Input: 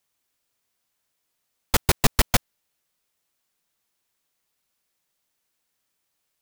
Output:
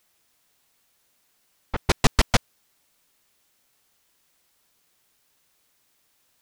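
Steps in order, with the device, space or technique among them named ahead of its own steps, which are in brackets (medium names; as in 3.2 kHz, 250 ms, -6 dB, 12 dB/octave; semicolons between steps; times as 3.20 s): worn cassette (low-pass 6.5 kHz 12 dB/octave; wow and flutter; level dips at 1.70 s, 192 ms -7 dB; white noise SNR 36 dB); trim +1 dB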